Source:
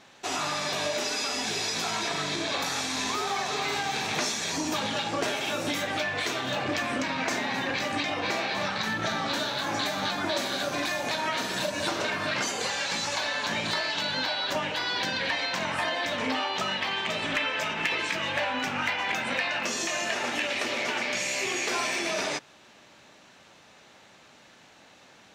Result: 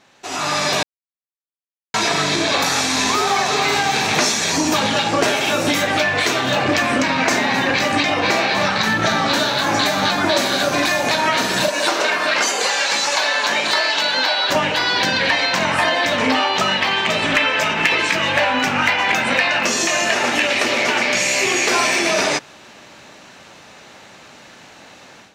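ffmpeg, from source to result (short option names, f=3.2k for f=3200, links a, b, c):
-filter_complex "[0:a]asettb=1/sr,asplit=3[a][b][c];[a]atrim=end=11.684[d];[b]atrim=start=11.68:end=14.5,asetpts=PTS-STARTPTS,afade=t=in:d=0.004:c=qsin,afade=t=out:st=2.816:d=0.004:c=qsin,highpass=370[e];[c]atrim=start=14.496[f];[d][e]acrossfade=d=0.004:c1=hsin:c2=qsin[g];[g][f]acrossfade=d=0.004:c1=qsin:c2=hsin,asplit=3[h][i][j];[h]atrim=end=0.83,asetpts=PTS-STARTPTS,afade=t=out:st=0.826:d=0.004:c=hsin[k];[i]atrim=start=0.83:end=1.94,asetpts=PTS-STARTPTS,volume=0[l];[j]atrim=start=1.94,asetpts=PTS-STARTPTS,afade=t=in:d=0.004:c=hsin[m];[k][l][m]concat=n=3:v=0:a=1,equalizer=f=3.4k:t=o:w=0.23:g=-2.5,dynaudnorm=f=280:g=3:m=12dB"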